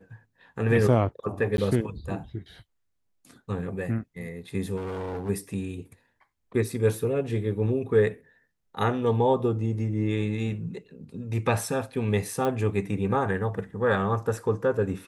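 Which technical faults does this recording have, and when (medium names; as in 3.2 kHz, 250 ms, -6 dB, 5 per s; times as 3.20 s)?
1.57–1.58 s: dropout 11 ms
4.76–5.30 s: clipped -29.5 dBFS
12.45 s: pop -16 dBFS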